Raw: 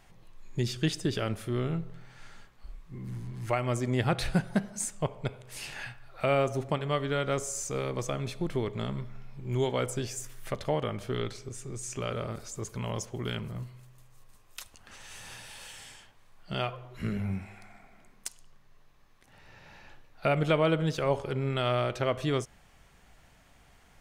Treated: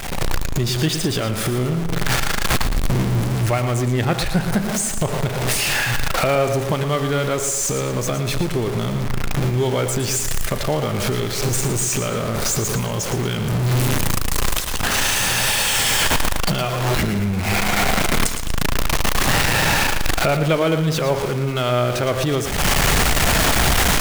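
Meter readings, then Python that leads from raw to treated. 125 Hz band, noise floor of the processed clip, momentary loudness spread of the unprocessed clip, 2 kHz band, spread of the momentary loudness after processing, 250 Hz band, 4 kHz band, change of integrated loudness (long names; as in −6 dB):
+13.0 dB, −24 dBFS, 16 LU, +18.0 dB, 6 LU, +11.0 dB, +18.0 dB, +12.0 dB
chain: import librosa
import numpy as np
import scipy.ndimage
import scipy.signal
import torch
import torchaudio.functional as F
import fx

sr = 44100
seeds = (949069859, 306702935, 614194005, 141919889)

y = x + 0.5 * 10.0 ** (-30.5 / 20.0) * np.sign(x)
y = fx.recorder_agc(y, sr, target_db=-21.0, rise_db_per_s=55.0, max_gain_db=30)
y = fx.echo_feedback(y, sr, ms=114, feedback_pct=40, wet_db=-9.5)
y = y * librosa.db_to_amplitude(5.5)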